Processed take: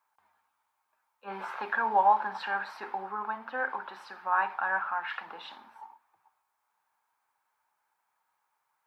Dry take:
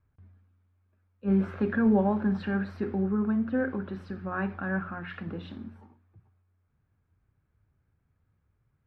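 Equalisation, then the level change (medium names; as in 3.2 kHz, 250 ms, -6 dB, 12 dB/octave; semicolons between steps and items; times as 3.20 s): resonant high-pass 890 Hz, resonance Q 7.1; treble shelf 2.8 kHz +11 dB; -1.0 dB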